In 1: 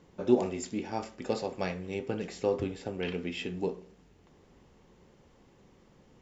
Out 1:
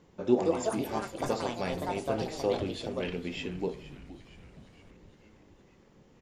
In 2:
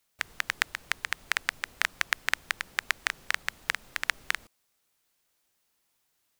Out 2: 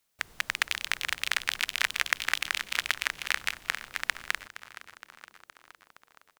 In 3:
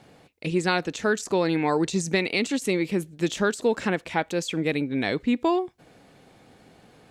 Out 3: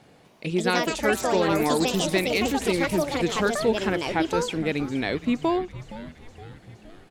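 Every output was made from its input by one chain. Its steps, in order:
delay with pitch and tempo change per echo 249 ms, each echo +5 semitones, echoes 2
echo with shifted repeats 467 ms, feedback 62%, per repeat −120 Hz, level −15.5 dB
level −1 dB

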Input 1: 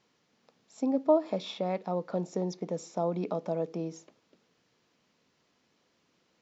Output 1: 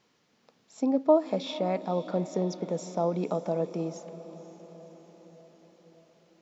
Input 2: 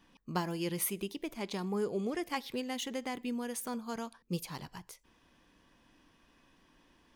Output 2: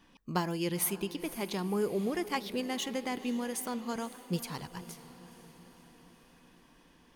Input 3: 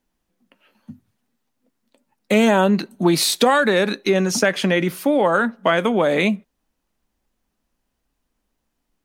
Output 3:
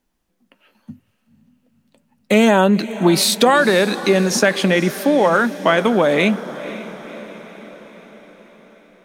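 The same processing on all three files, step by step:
feedback delay with all-pass diffusion 514 ms, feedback 58%, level −15 dB
level +2.5 dB

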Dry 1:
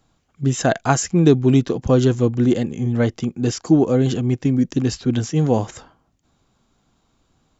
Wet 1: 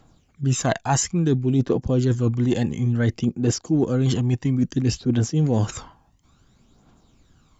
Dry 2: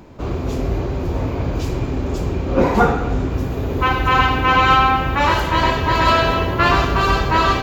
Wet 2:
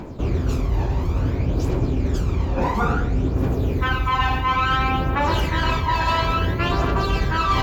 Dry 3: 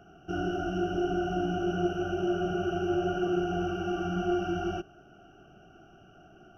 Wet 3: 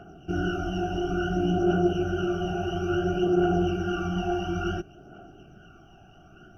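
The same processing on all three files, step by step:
phase shifter 0.58 Hz, delay 1.2 ms, feedback 52%
reversed playback
downward compressor 6 to 1, threshold −20 dBFS
reversed playback
level +2.5 dB

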